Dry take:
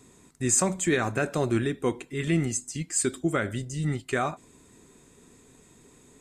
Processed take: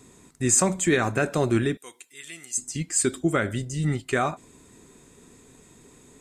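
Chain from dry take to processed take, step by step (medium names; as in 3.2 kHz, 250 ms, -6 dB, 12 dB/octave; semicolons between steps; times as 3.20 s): 1.77–2.58 s: differentiator; trim +3 dB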